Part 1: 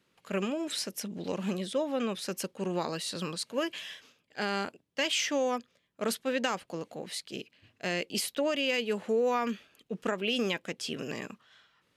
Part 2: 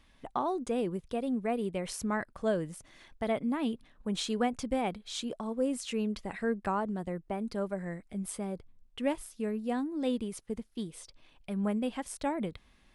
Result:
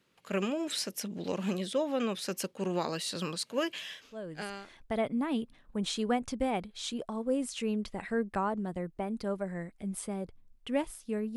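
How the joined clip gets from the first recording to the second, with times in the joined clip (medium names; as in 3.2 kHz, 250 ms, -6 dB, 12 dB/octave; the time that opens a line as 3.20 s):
part 1
4.39 s: go over to part 2 from 2.70 s, crossfade 0.74 s linear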